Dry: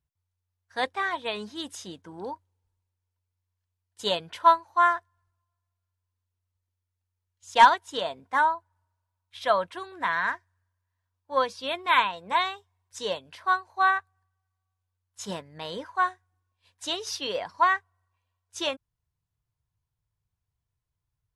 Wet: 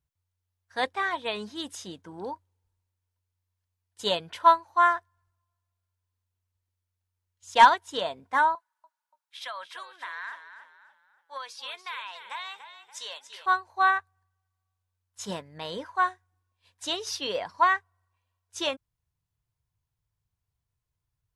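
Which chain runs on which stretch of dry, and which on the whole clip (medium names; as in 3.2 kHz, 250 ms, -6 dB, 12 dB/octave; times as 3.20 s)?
8.55–13.46 s: high-pass 1.2 kHz + compression, threshold -33 dBFS + frequency-shifting echo 287 ms, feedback 37%, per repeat -40 Hz, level -10.5 dB
whole clip: none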